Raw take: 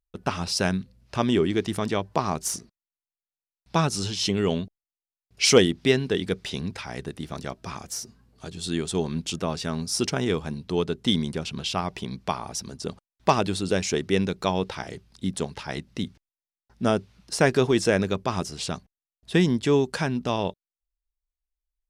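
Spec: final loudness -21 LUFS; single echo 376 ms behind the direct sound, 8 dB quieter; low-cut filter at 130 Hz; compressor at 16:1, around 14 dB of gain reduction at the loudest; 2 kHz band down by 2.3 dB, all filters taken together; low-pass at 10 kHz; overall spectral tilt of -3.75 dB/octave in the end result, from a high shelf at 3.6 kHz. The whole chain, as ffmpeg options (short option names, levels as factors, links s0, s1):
-af "highpass=130,lowpass=10000,equalizer=f=2000:t=o:g=-4,highshelf=f=3600:g=3.5,acompressor=threshold=0.0562:ratio=16,aecho=1:1:376:0.398,volume=3.35"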